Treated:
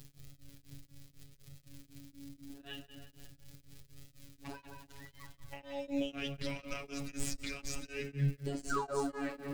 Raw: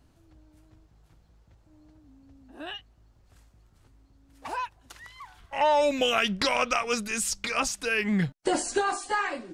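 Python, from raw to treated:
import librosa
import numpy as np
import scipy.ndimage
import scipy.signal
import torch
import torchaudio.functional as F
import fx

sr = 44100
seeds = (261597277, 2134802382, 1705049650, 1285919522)

p1 = fx.tracing_dist(x, sr, depth_ms=0.028)
p2 = fx.high_shelf(p1, sr, hz=6000.0, db=-11.5)
p3 = fx.dmg_crackle(p2, sr, seeds[0], per_s=230.0, level_db=-39.0)
p4 = fx.over_compress(p3, sr, threshold_db=-35.0, ratio=-1.0)
p5 = p3 + (p4 * 10.0 ** (0.5 / 20.0))
p6 = fx.tone_stack(p5, sr, knobs='10-0-1')
p7 = fx.spec_paint(p6, sr, seeds[1], shape='fall', start_s=8.7, length_s=0.41, low_hz=230.0, high_hz=1600.0, level_db=-43.0)
p8 = fx.robotise(p7, sr, hz=140.0)
p9 = p8 + fx.echo_tape(p8, sr, ms=176, feedback_pct=51, wet_db=-5.5, lp_hz=2800.0, drive_db=30.0, wow_cents=9, dry=0)
p10 = fx.rev_fdn(p9, sr, rt60_s=2.4, lf_ratio=1.3, hf_ratio=0.6, size_ms=35.0, drr_db=10.0)
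p11 = p10 * np.abs(np.cos(np.pi * 4.0 * np.arange(len(p10)) / sr))
y = p11 * 10.0 ** (11.0 / 20.0)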